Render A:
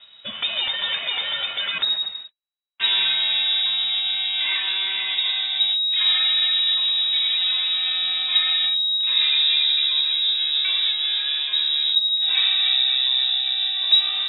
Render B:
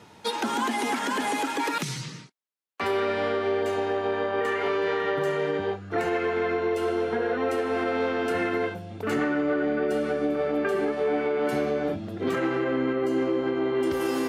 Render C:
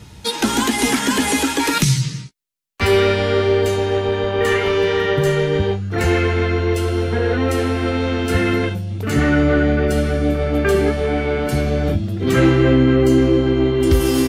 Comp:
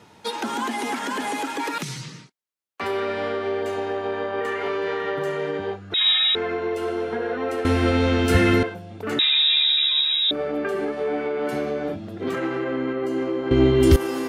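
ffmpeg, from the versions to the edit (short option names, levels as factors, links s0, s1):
-filter_complex "[0:a]asplit=2[s0][s1];[2:a]asplit=2[s2][s3];[1:a]asplit=5[s4][s5][s6][s7][s8];[s4]atrim=end=5.942[s9];[s0]atrim=start=5.938:end=6.352[s10];[s5]atrim=start=6.348:end=7.652[s11];[s2]atrim=start=7.648:end=8.632[s12];[s6]atrim=start=8.628:end=9.192[s13];[s1]atrim=start=9.188:end=10.312[s14];[s7]atrim=start=10.308:end=13.512[s15];[s3]atrim=start=13.508:end=13.962[s16];[s8]atrim=start=13.958[s17];[s9][s10]acrossfade=d=0.004:c1=hsin:c2=hsin[s18];[s18][s11]acrossfade=d=0.004:c1=hsin:c2=hsin[s19];[s19][s12]acrossfade=d=0.004:c1=hsin:c2=hsin[s20];[s20][s13]acrossfade=d=0.004:c1=hsin:c2=hsin[s21];[s21][s14]acrossfade=d=0.004:c1=hsin:c2=hsin[s22];[s22][s15]acrossfade=d=0.004:c1=hsin:c2=hsin[s23];[s23][s16]acrossfade=d=0.004:c1=hsin:c2=hsin[s24];[s24][s17]acrossfade=d=0.004:c1=hsin:c2=hsin"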